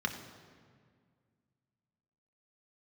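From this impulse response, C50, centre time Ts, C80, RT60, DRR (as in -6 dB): 8.5 dB, 25 ms, 9.5 dB, 1.9 s, 3.5 dB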